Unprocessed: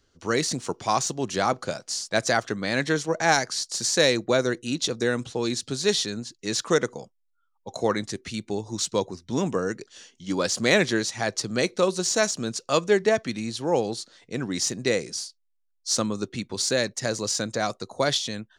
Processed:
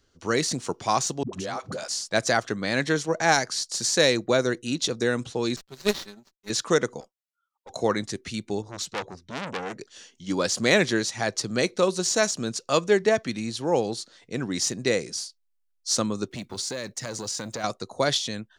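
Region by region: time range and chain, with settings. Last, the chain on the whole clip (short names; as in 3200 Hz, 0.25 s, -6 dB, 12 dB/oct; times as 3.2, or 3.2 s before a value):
1.23–1.88 dispersion highs, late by 98 ms, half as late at 330 Hz + compressor, threshold -28 dBFS
5.56–6.5 comb 5.2 ms, depth 96% + power-law curve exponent 2 + running maximum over 3 samples
7–7.7 HPF 470 Hz + tube stage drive 38 dB, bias 0.55
8.62–9.79 high shelf 7400 Hz -9 dB + notch 1400 Hz, Q 16 + core saturation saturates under 3800 Hz
16.29–17.64 block floating point 7-bit + compressor 12:1, threshold -26 dBFS + core saturation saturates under 660 Hz
whole clip: dry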